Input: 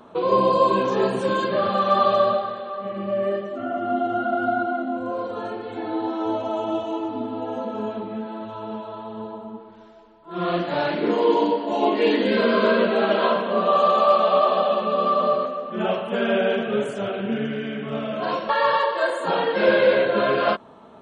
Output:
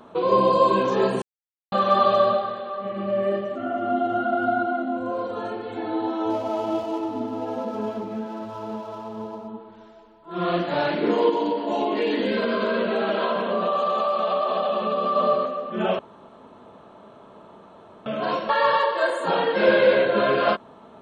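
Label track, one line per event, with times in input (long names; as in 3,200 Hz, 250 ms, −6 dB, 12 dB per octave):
1.220000	1.720000	silence
2.640000	3.210000	delay throw 340 ms, feedback 40%, level −8.5 dB
6.300000	9.480000	running median over 15 samples
11.290000	15.160000	downward compressor, threshold −19 dBFS
15.990000	18.060000	fill with room tone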